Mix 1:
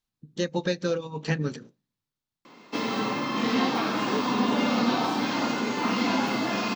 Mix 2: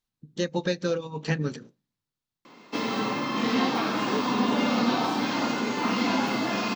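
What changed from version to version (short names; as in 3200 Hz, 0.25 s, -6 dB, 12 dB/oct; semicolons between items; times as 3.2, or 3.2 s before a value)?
none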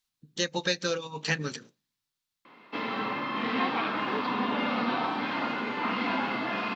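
background: add air absorption 470 m; master: add tilt shelf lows -7 dB, about 920 Hz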